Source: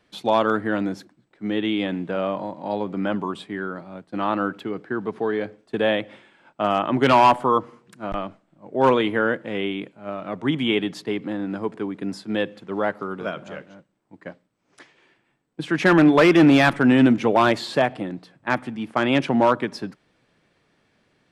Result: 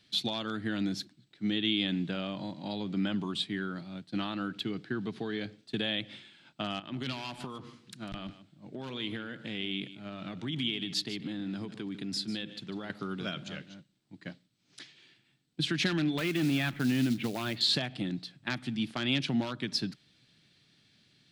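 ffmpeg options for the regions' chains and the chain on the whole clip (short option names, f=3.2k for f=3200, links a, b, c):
-filter_complex "[0:a]asettb=1/sr,asplit=3[a][b][c];[a]atrim=end=6.794[d];[b]atrim=start=6.79:end=12.9,asetpts=PTS-STARTPTS,afade=t=in:d=0.004:c=qsin,afade=t=out:st=6.106:d=0.004:c=qsin,acompressor=threshold=-28dB:ratio=12:attack=3.2:release=140:knee=1:detection=peak,aecho=1:1:148:0.211,atrim=end_sample=269451[e];[c]atrim=start=12.896[f];[d][e]acrossfade=d=0.004:c1=hsin:c2=qsin[g];[g][f]acrossfade=d=0.004:c1=qsin:c2=hsin,asettb=1/sr,asplit=3[h][i][j];[h]atrim=end=16.184[k];[i]atrim=start=16.18:end=17.61,asetpts=PTS-STARTPTS,afade=t=in:d=0.004:c=qsin,afade=t=out:st=1.426:d=0.004:c=qsin,lowpass=f=2.9k:w=0.5412,lowpass=f=2.9k:w=1.3066,acrusher=bits=6:mode=log:mix=0:aa=0.000001[l];[j]atrim=start=17.606[m];[k][l]acrossfade=d=0.004:c1=hsin:c2=qsin[n];[n][m]acrossfade=d=0.004:c1=qsin:c2=hsin,lowshelf=f=120:g=-9,acompressor=threshold=-24dB:ratio=6,equalizer=f=125:t=o:w=1:g=7,equalizer=f=500:t=o:w=1:g=-11,equalizer=f=1k:t=o:w=1:g=-11,equalizer=f=2k:t=o:w=1:g=-3,equalizer=f=4k:t=o:w=1:g=11"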